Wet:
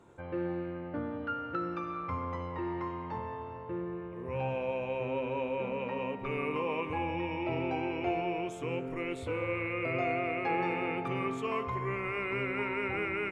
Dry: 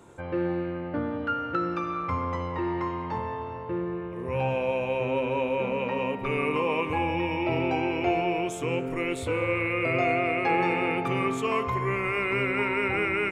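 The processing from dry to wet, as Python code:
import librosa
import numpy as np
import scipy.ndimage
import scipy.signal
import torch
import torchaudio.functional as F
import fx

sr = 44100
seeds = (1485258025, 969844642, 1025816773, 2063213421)

y = fx.high_shelf(x, sr, hz=6000.0, db=-10.5)
y = y * 10.0 ** (-6.5 / 20.0)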